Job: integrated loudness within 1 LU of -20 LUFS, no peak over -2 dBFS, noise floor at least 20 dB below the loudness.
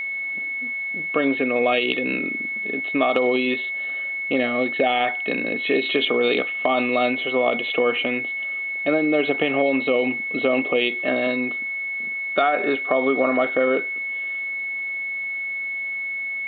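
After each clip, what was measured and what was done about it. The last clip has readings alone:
steady tone 2.2 kHz; tone level -25 dBFS; loudness -22.0 LUFS; peak level -6.0 dBFS; loudness target -20.0 LUFS
-> band-stop 2.2 kHz, Q 30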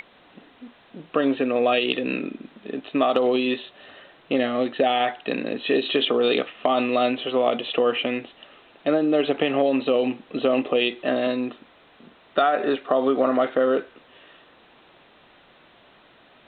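steady tone not found; loudness -23.0 LUFS; peak level -6.5 dBFS; loudness target -20.0 LUFS
-> trim +3 dB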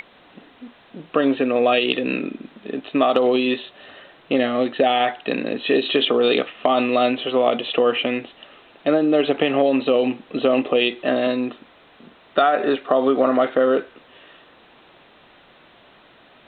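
loudness -20.0 LUFS; peak level -3.5 dBFS; noise floor -52 dBFS

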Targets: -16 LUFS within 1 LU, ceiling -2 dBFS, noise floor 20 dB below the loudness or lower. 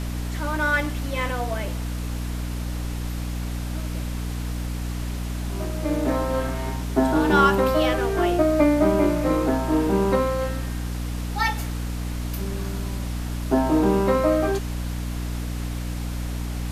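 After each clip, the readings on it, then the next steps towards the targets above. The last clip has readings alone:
hum 60 Hz; highest harmonic 300 Hz; hum level -26 dBFS; noise floor -29 dBFS; noise floor target -45 dBFS; loudness -24.5 LUFS; peak level -6.0 dBFS; loudness target -16.0 LUFS
-> hum notches 60/120/180/240/300 Hz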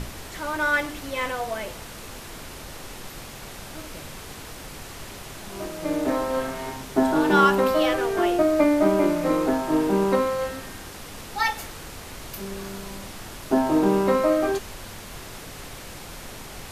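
hum not found; noise floor -40 dBFS; noise floor target -43 dBFS
-> noise print and reduce 6 dB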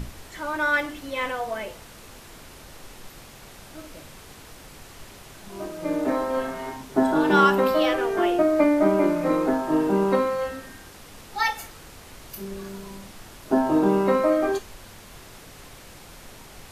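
noise floor -46 dBFS; loudness -23.0 LUFS; peak level -6.0 dBFS; loudness target -16.0 LUFS
-> trim +7 dB; peak limiter -2 dBFS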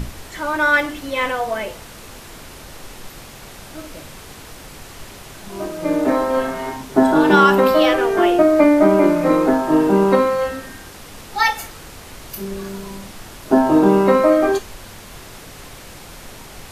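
loudness -16.0 LUFS; peak level -2.0 dBFS; noise floor -39 dBFS

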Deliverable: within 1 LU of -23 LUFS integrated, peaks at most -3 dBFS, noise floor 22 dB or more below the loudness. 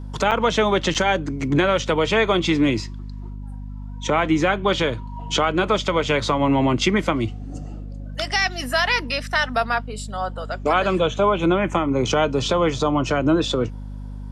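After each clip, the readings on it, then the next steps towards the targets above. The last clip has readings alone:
dropouts 2; longest dropout 7.5 ms; hum 50 Hz; highest harmonic 250 Hz; hum level -30 dBFS; loudness -21.0 LUFS; peak level -7.5 dBFS; loudness target -23.0 LUFS
-> interpolate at 0.31/0.94 s, 7.5 ms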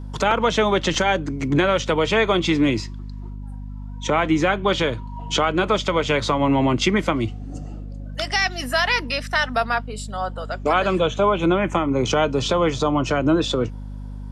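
dropouts 0; hum 50 Hz; highest harmonic 250 Hz; hum level -30 dBFS
-> de-hum 50 Hz, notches 5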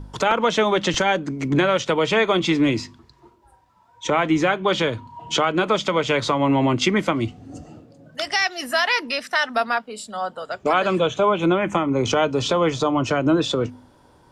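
hum not found; loudness -21.0 LUFS; peak level -6.0 dBFS; loudness target -23.0 LUFS
-> trim -2 dB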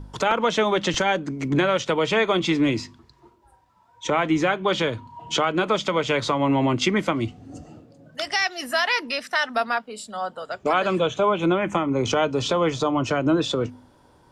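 loudness -23.0 LUFS; peak level -8.0 dBFS; noise floor -57 dBFS

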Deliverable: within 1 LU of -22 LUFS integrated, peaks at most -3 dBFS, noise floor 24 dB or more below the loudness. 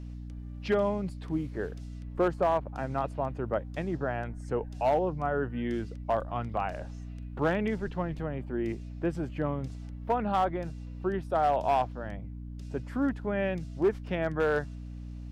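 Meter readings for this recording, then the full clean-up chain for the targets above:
clipped samples 0.3%; clipping level -18.5 dBFS; hum 60 Hz; highest harmonic 300 Hz; hum level -38 dBFS; loudness -31.5 LUFS; peak level -18.5 dBFS; loudness target -22.0 LUFS
-> clip repair -18.5 dBFS; de-hum 60 Hz, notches 5; trim +9.5 dB

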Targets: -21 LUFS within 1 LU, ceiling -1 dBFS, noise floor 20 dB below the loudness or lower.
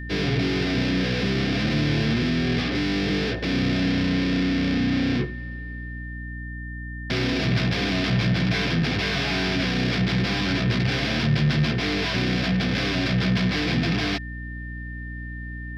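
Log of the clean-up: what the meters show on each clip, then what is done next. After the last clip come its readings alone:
hum 60 Hz; highest harmonic 300 Hz; hum level -32 dBFS; steady tone 1.8 kHz; tone level -38 dBFS; loudness -23.0 LUFS; peak level -10.5 dBFS; loudness target -21.0 LUFS
-> hum notches 60/120/180/240/300 Hz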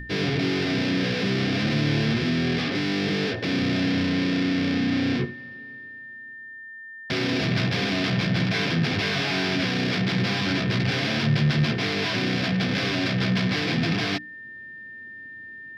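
hum not found; steady tone 1.8 kHz; tone level -38 dBFS
-> band-stop 1.8 kHz, Q 30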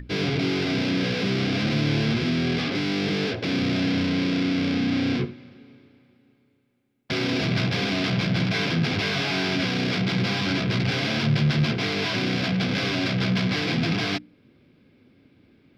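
steady tone not found; loudness -24.0 LUFS; peak level -11.5 dBFS; loudness target -21.0 LUFS
-> trim +3 dB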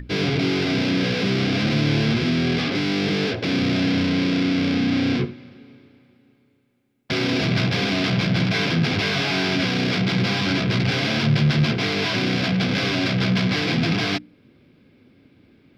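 loudness -21.0 LUFS; peak level -8.5 dBFS; noise floor -58 dBFS

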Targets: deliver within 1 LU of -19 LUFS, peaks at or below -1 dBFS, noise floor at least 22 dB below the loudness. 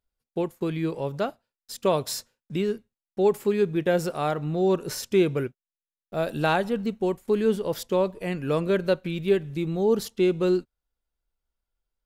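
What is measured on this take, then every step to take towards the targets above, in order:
loudness -26.0 LUFS; peak level -11.0 dBFS; loudness target -19.0 LUFS
-> trim +7 dB

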